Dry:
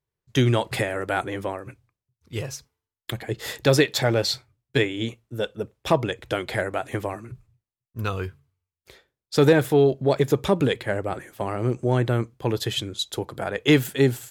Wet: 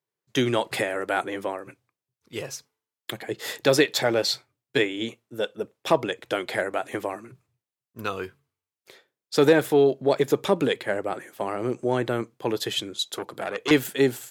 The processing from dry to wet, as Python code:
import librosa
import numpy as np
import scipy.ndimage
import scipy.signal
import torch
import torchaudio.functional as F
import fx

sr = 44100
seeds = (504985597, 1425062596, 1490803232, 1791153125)

y = scipy.signal.sosfilt(scipy.signal.butter(2, 230.0, 'highpass', fs=sr, output='sos'), x)
y = fx.transformer_sat(y, sr, knee_hz=2900.0, at=(12.98, 13.71))